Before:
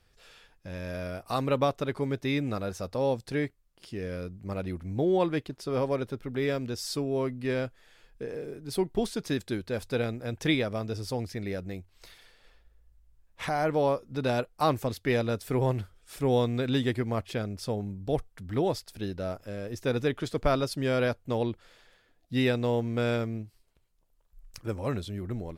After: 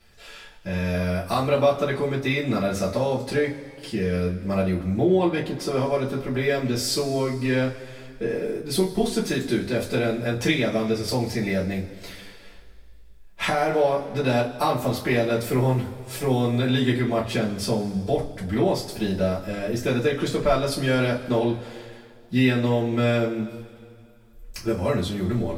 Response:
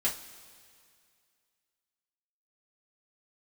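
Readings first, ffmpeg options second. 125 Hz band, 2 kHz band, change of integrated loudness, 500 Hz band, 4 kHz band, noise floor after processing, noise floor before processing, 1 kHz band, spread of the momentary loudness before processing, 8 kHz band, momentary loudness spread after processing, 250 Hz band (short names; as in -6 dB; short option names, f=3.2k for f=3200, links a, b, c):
+6.5 dB, +7.5 dB, +6.5 dB, +6.0 dB, +7.5 dB, -47 dBFS, -66 dBFS, +5.0 dB, 11 LU, +9.5 dB, 10 LU, +7.0 dB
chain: -filter_complex "[0:a]bandreject=f=50:t=h:w=6,bandreject=f=100:t=h:w=6,bandreject=f=150:t=h:w=6,bandreject=f=200:t=h:w=6,bandreject=f=250:t=h:w=6,acompressor=threshold=-32dB:ratio=2.5[a];[1:a]atrim=start_sample=2205[b];[a][b]afir=irnorm=-1:irlink=0,volume=5.5dB"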